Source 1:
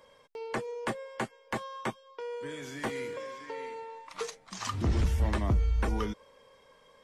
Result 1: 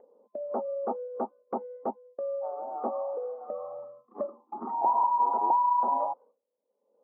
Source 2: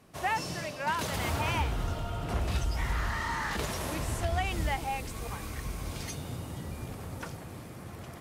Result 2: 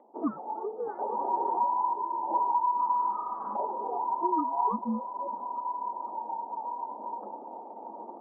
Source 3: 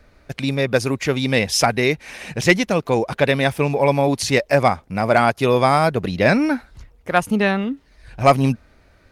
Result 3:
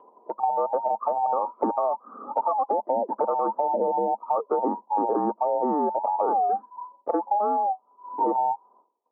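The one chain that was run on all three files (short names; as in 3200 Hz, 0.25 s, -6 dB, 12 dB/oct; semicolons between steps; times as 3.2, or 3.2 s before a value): band inversion scrambler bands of 1000 Hz; low-pass opened by the level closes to 660 Hz, open at -16.5 dBFS; spectral noise reduction 9 dB; Chebyshev band-pass 210–1200 Hz, order 5; expander -51 dBFS; dynamic EQ 940 Hz, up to +6 dB, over -31 dBFS, Q 0.91; upward compressor, threshold -33 dBFS; limiter -8.5 dBFS; compressor 4:1, threshold -28 dBFS; gain +4.5 dB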